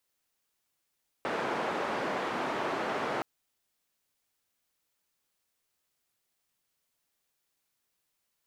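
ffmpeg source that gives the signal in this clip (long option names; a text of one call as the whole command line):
ffmpeg -f lavfi -i "anoisesrc=color=white:duration=1.97:sample_rate=44100:seed=1,highpass=frequency=240,lowpass=frequency=1100,volume=-14.1dB" out.wav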